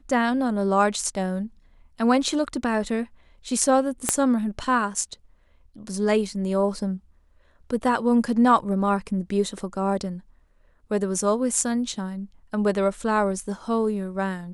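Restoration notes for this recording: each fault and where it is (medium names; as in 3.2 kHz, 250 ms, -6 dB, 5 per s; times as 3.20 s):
4.09 s: pop -5 dBFS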